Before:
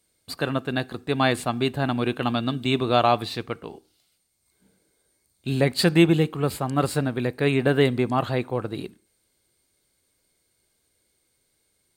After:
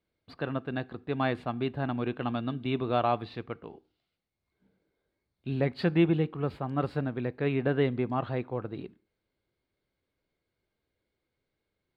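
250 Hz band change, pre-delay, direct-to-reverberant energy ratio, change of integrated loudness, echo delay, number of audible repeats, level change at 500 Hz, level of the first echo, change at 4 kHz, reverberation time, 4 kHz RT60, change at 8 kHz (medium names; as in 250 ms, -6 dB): -6.5 dB, no reverb, no reverb, -7.0 dB, no echo, no echo, -7.0 dB, no echo, -14.5 dB, no reverb, no reverb, under -30 dB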